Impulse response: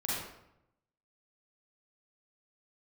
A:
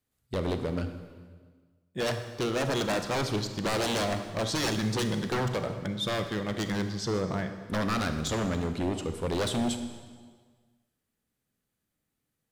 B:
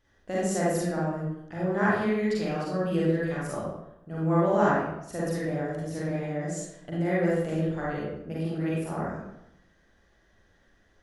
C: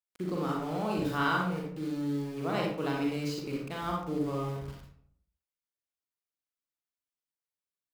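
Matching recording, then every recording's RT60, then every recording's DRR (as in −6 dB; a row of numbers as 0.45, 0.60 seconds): B; 1.6, 0.80, 0.65 seconds; 7.5, −7.5, −1.5 decibels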